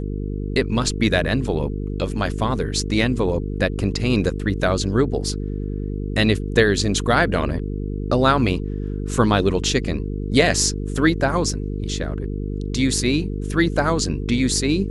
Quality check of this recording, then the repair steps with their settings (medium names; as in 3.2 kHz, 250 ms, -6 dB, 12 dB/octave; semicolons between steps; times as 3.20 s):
buzz 50 Hz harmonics 9 -26 dBFS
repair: de-hum 50 Hz, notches 9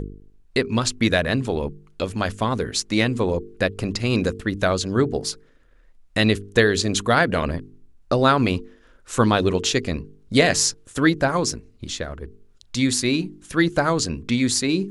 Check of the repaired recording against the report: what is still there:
nothing left